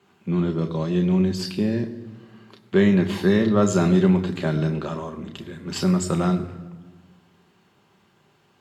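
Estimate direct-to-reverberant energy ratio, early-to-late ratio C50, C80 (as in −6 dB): 5.0 dB, 13.0 dB, 14.0 dB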